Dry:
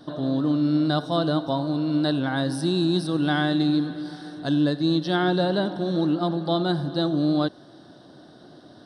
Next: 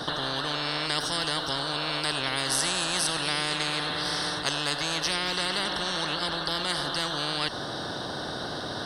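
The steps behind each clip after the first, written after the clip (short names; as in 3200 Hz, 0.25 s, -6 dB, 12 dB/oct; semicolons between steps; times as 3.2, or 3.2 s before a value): spectral compressor 10:1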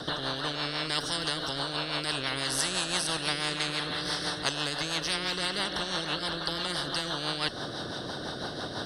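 rotary speaker horn 6 Hz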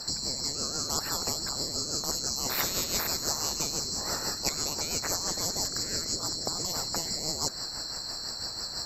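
band-swap scrambler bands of 4000 Hz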